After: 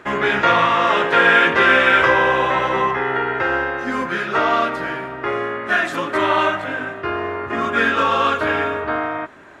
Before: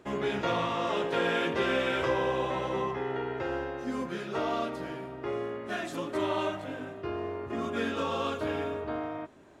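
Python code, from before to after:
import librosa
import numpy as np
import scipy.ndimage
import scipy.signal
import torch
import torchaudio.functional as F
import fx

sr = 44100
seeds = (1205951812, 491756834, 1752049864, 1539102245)

y = fx.peak_eq(x, sr, hz=1600.0, db=14.0, octaves=1.7)
y = F.gain(torch.from_numpy(y), 7.0).numpy()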